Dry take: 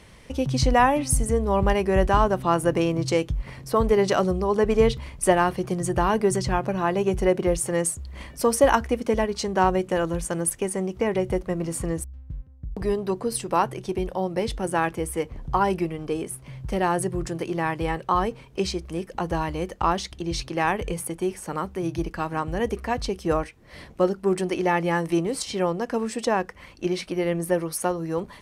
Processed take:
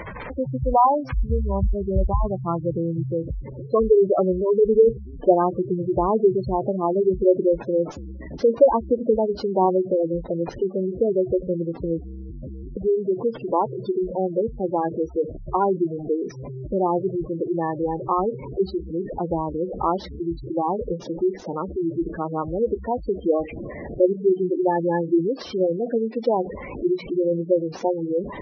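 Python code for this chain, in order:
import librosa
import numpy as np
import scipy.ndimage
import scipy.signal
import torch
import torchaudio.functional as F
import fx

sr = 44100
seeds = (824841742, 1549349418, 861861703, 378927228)

y = fx.delta_mod(x, sr, bps=32000, step_db=-26.0)
y = fx.peak_eq(y, sr, hz=fx.steps((0.0, 1000.0), (1.16, 78.0), (3.27, 420.0)), db=9.0, octaves=2.4)
y = fx.spec_gate(y, sr, threshold_db=-10, keep='strong')
y = y * 10.0 ** (-4.0 / 20.0)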